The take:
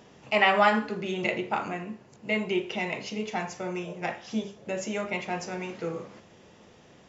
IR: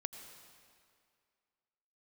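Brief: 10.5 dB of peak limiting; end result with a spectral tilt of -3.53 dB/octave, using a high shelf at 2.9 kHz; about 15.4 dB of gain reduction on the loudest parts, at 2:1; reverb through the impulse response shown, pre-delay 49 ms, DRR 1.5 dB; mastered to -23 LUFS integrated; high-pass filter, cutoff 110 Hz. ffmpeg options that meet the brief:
-filter_complex "[0:a]highpass=110,highshelf=f=2900:g=8,acompressor=threshold=0.00631:ratio=2,alimiter=level_in=2.11:limit=0.0631:level=0:latency=1,volume=0.473,asplit=2[s0][s1];[1:a]atrim=start_sample=2205,adelay=49[s2];[s1][s2]afir=irnorm=-1:irlink=0,volume=1[s3];[s0][s3]amix=inputs=2:normalize=0,volume=6.68"

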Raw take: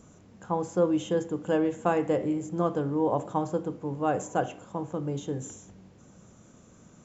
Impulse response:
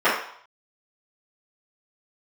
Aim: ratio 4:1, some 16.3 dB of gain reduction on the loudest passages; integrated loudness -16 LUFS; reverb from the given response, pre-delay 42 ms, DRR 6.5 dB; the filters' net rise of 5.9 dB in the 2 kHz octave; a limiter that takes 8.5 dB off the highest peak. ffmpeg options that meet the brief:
-filter_complex "[0:a]equalizer=f=2000:t=o:g=8.5,acompressor=threshold=0.01:ratio=4,alimiter=level_in=2.99:limit=0.0631:level=0:latency=1,volume=0.335,asplit=2[s0][s1];[1:a]atrim=start_sample=2205,adelay=42[s2];[s1][s2]afir=irnorm=-1:irlink=0,volume=0.0376[s3];[s0][s3]amix=inputs=2:normalize=0,volume=26.6"

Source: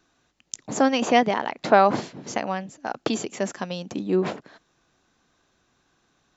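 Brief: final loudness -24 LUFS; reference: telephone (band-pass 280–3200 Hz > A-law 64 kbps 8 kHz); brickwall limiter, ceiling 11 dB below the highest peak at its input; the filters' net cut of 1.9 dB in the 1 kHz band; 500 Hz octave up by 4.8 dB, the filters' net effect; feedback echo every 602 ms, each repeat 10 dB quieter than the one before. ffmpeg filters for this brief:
-af "equalizer=f=500:t=o:g=9,equalizer=f=1000:t=o:g=-8,alimiter=limit=0.224:level=0:latency=1,highpass=280,lowpass=3200,aecho=1:1:602|1204|1806|2408:0.316|0.101|0.0324|0.0104,volume=1.5" -ar 8000 -c:a pcm_alaw

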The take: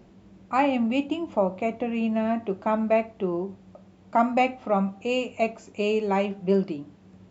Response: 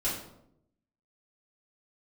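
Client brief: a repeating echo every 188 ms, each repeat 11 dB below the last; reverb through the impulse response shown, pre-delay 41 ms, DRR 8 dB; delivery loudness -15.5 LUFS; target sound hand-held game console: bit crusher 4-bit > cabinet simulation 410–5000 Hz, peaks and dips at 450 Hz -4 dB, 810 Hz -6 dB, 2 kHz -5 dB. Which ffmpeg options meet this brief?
-filter_complex "[0:a]aecho=1:1:188|376|564:0.282|0.0789|0.0221,asplit=2[s0][s1];[1:a]atrim=start_sample=2205,adelay=41[s2];[s1][s2]afir=irnorm=-1:irlink=0,volume=0.178[s3];[s0][s3]amix=inputs=2:normalize=0,acrusher=bits=3:mix=0:aa=0.000001,highpass=410,equalizer=f=450:t=q:w=4:g=-4,equalizer=f=810:t=q:w=4:g=-6,equalizer=f=2000:t=q:w=4:g=-5,lowpass=f=5000:w=0.5412,lowpass=f=5000:w=1.3066,volume=3.98"

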